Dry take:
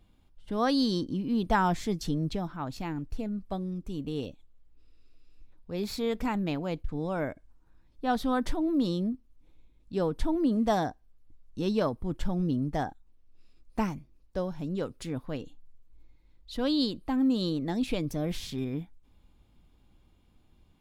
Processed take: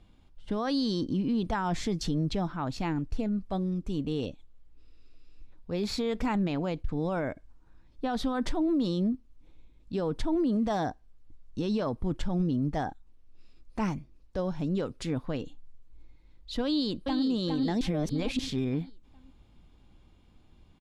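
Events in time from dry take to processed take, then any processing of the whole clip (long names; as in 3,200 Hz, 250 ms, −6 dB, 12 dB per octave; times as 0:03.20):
0:16.65–0:17.25: delay throw 410 ms, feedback 40%, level −5 dB
0:17.81–0:18.39: reverse
whole clip: low-pass filter 7,800 Hz 12 dB per octave; brickwall limiter −25.5 dBFS; level +4 dB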